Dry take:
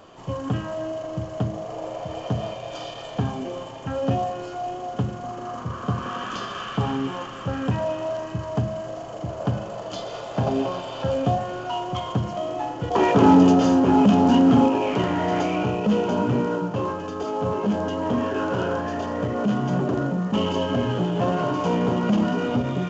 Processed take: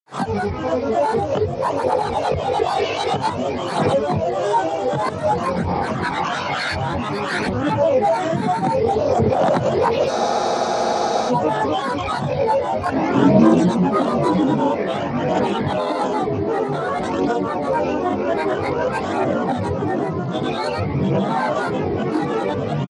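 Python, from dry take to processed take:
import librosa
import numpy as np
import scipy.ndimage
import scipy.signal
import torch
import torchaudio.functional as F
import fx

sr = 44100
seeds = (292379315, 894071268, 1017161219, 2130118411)

y = fx.recorder_agc(x, sr, target_db=-13.5, rise_db_per_s=61.0, max_gain_db=30)
y = scipy.signal.sosfilt(scipy.signal.butter(2, 120.0, 'highpass', fs=sr, output='sos'), y)
y = fx.peak_eq(y, sr, hz=610.0, db=5.5, octaves=0.24)
y = fx.granulator(y, sr, seeds[0], grain_ms=100.0, per_s=20.0, spray_ms=100.0, spread_st=7)
y = fx.chorus_voices(y, sr, voices=2, hz=0.26, base_ms=21, depth_ms=1.5, mix_pct=60)
y = fx.spec_freeze(y, sr, seeds[1], at_s=10.12, hold_s=1.17)
y = F.gain(torch.from_numpy(y), 4.0).numpy()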